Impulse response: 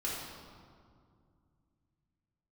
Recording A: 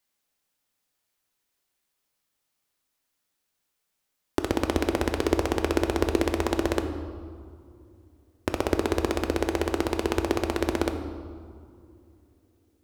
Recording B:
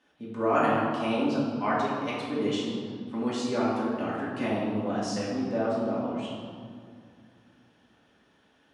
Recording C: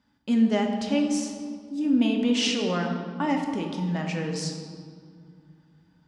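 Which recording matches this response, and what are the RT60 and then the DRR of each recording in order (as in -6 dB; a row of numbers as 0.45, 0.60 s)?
B; 2.4, 2.2, 2.2 s; 6.5, -7.0, 1.5 dB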